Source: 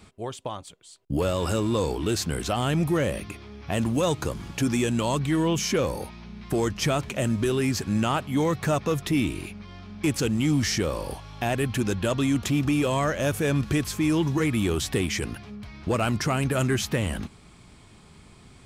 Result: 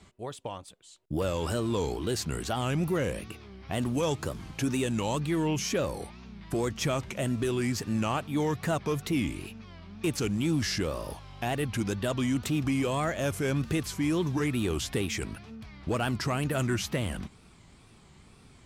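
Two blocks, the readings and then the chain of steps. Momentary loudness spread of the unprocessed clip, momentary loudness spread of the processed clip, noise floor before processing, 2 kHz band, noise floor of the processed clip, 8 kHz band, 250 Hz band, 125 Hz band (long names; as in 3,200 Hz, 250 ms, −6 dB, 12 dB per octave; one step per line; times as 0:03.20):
12 LU, 12 LU, −51 dBFS, −4.5 dB, −56 dBFS, −4.5 dB, −4.5 dB, −4.5 dB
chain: tape wow and flutter 140 cents
level −4.5 dB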